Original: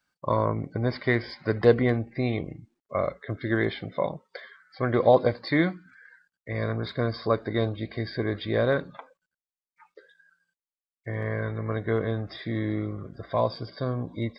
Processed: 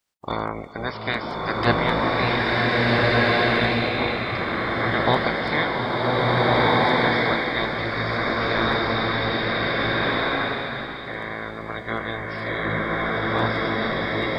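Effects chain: spectral limiter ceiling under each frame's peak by 24 dB; bloom reverb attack 1.71 s, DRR -7.5 dB; gain -2.5 dB

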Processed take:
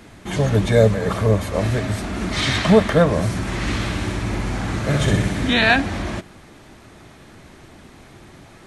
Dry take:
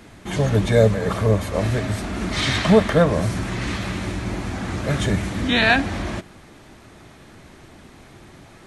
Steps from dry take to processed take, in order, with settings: 3.41–5.54 flutter echo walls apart 10.7 m, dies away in 0.81 s; gain +1 dB

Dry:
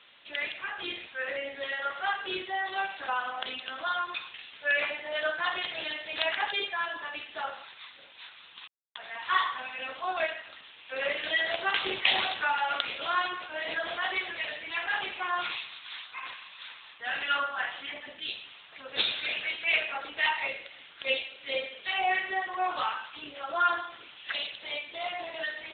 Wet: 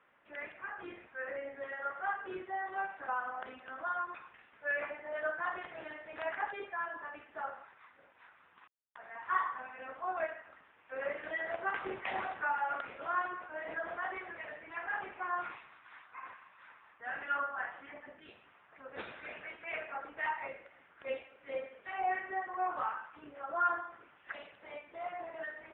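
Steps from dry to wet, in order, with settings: inverse Chebyshev low-pass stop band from 9000 Hz, stop band 80 dB; gain -4.5 dB

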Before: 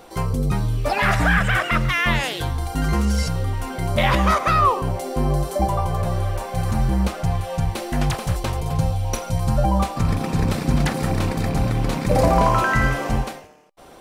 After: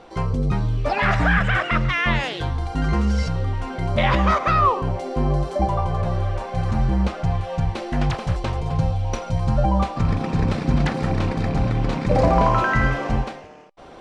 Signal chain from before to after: reverse; upward compressor, threshold -36 dBFS; reverse; air absorption 120 m

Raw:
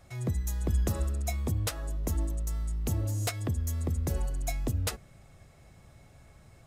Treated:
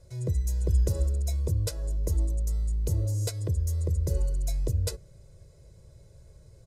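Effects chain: Bessel low-pass 10000 Hz, order 2; band shelf 1600 Hz -11.5 dB 2.5 oct; comb 2 ms, depth 78%

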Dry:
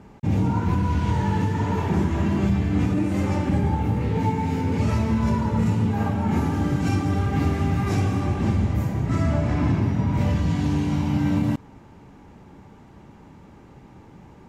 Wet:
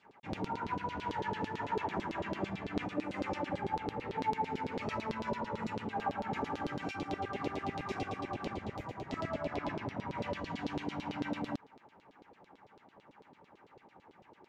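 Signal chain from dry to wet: LFO band-pass saw down 9 Hz 390–4300 Hz; 6.91–9.69 bands offset in time highs, lows 30 ms, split 1700 Hz

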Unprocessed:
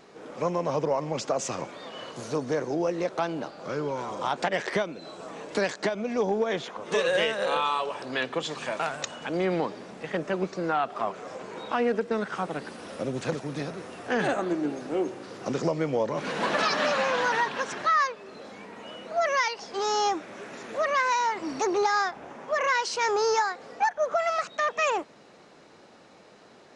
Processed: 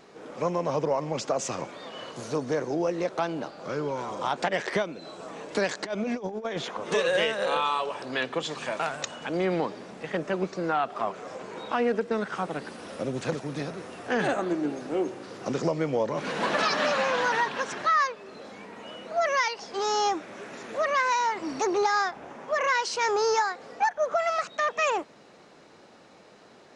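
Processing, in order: 5.71–6.94 negative-ratio compressor -30 dBFS, ratio -0.5

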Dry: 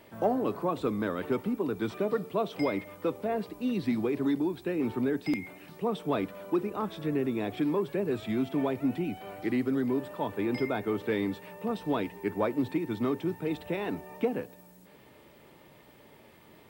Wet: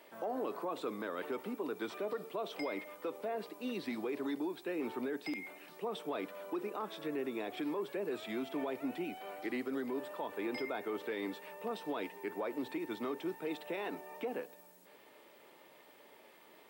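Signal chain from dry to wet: HPF 390 Hz 12 dB/oct; limiter -27.5 dBFS, peak gain reduction 11 dB; gain -2 dB

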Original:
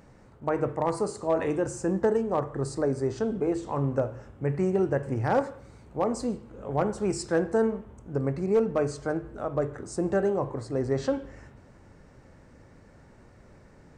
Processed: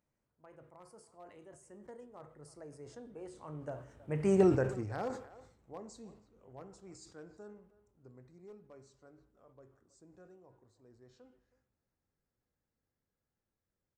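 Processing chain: Doppler pass-by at 4.4, 26 m/s, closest 3 m; high shelf 3100 Hz +8 dB; speakerphone echo 0.32 s, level -18 dB; sustainer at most 99 dB/s

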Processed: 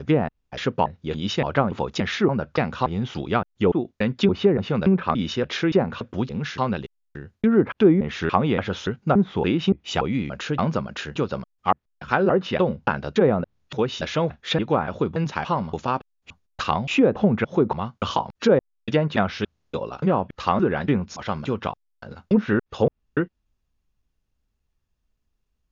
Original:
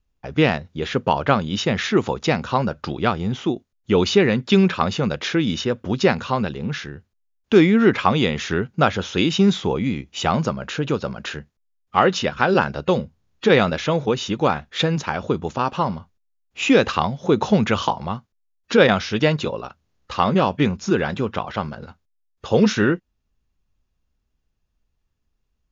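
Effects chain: slices in reverse order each 0.286 s, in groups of 2; treble ducked by the level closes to 820 Hz, closed at -11.5 dBFS; gain -2 dB

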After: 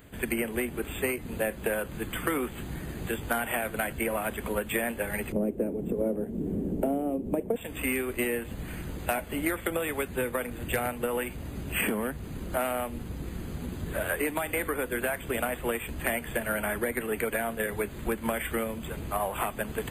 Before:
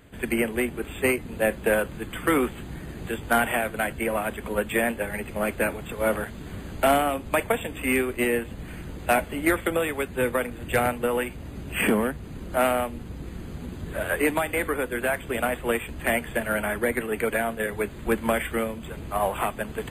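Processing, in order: 5.32–7.56 EQ curve 120 Hz 0 dB, 190 Hz +12 dB, 420 Hz +12 dB, 1300 Hz -16 dB, 2900 Hz -16 dB, 4200 Hz -22 dB, 10000 Hz -10 dB; compressor 6:1, threshold -26 dBFS, peak gain reduction 14 dB; high shelf 12000 Hz +11 dB

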